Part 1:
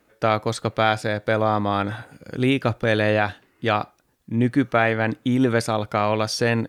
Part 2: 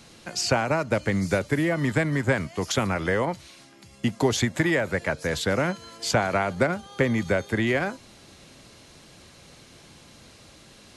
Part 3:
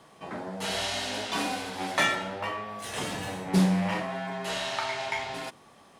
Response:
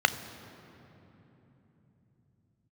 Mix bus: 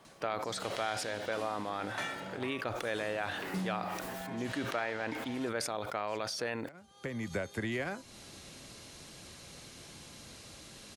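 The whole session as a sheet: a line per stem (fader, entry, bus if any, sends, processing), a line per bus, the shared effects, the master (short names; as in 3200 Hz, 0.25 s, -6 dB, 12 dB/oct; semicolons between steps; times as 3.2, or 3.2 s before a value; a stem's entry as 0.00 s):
-4.5 dB, 0.00 s, no send, tone controls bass -13 dB, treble -2 dB; sustainer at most 44 dB/s
-2.0 dB, 0.05 s, no send, high shelf 5100 Hz +6 dB; auto duck -23 dB, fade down 0.25 s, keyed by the first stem
-5.5 dB, 0.00 s, no send, dry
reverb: off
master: compressor 2:1, threshold -40 dBFS, peak gain reduction 12 dB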